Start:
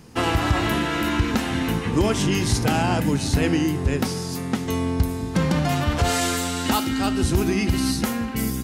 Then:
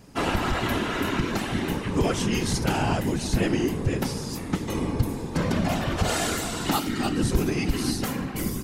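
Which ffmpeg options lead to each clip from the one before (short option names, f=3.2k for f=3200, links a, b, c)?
-af "afftfilt=real='hypot(re,im)*cos(2*PI*random(0))':imag='hypot(re,im)*sin(2*PI*random(1))':win_size=512:overlap=0.75,volume=2.5dB"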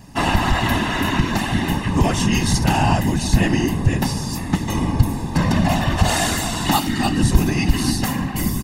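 -af "aecho=1:1:1.1:0.59,volume=5.5dB"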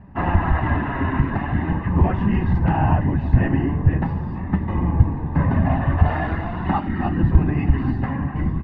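-af "lowpass=f=1.9k:w=0.5412,lowpass=f=1.9k:w=1.3066,equalizer=f=77:w=2:g=11.5,flanger=delay=5:depth=2.7:regen=62:speed=0.44:shape=triangular,volume=1dB"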